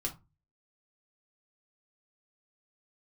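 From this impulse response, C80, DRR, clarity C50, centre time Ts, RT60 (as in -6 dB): 23.0 dB, -0.5 dB, 14.0 dB, 12 ms, 0.25 s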